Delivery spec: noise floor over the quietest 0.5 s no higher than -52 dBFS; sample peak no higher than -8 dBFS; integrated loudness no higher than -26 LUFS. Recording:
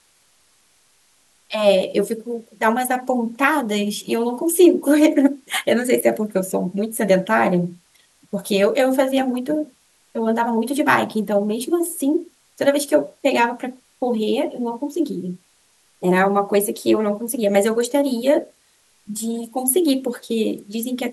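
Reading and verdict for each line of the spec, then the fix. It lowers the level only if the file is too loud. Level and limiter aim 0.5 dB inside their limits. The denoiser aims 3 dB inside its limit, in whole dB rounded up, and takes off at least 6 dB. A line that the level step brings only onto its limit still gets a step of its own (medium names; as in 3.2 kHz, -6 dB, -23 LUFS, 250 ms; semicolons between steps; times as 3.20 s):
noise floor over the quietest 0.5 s -59 dBFS: pass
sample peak -2.0 dBFS: fail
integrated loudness -20.0 LUFS: fail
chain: trim -6.5 dB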